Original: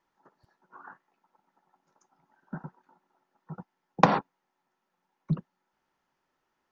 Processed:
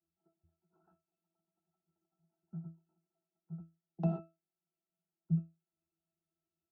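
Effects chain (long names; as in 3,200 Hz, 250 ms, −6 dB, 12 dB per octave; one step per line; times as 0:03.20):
parametric band 1,600 Hz −14.5 dB 1.4 octaves
resonances in every octave E, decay 0.26 s
level +3 dB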